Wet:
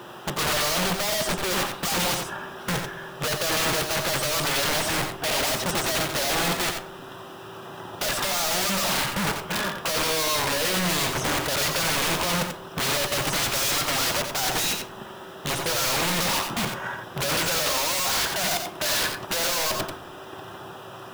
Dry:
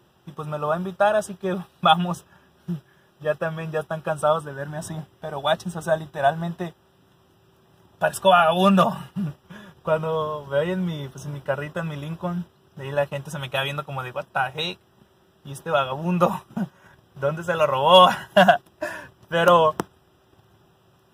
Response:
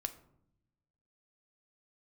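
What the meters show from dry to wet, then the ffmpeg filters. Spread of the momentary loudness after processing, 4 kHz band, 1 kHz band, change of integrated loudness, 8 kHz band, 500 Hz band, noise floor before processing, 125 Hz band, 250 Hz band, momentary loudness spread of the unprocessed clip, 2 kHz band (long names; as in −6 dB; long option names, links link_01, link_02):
13 LU, +5.0 dB, −6.0 dB, −1.5 dB, +17.5 dB, −7.0 dB, −60 dBFS, −4.0 dB, −4.5 dB, 18 LU, +2.5 dB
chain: -filter_complex "[0:a]alimiter=limit=-12dB:level=0:latency=1:release=197,asplit=2[link_01][link_02];[link_02]highpass=frequency=720:poles=1,volume=36dB,asoftclip=type=tanh:threshold=-7dB[link_03];[link_01][link_03]amix=inputs=2:normalize=0,lowpass=frequency=1900:poles=1,volume=-6dB,aeval=exprs='(mod(5.96*val(0)+1,2)-1)/5.96':channel_layout=same,acrusher=bits=7:mix=0:aa=0.000001,asplit=2[link_04][link_05];[1:a]atrim=start_sample=2205,adelay=88[link_06];[link_05][link_06]afir=irnorm=-1:irlink=0,volume=-5dB[link_07];[link_04][link_07]amix=inputs=2:normalize=0,volume=-6dB"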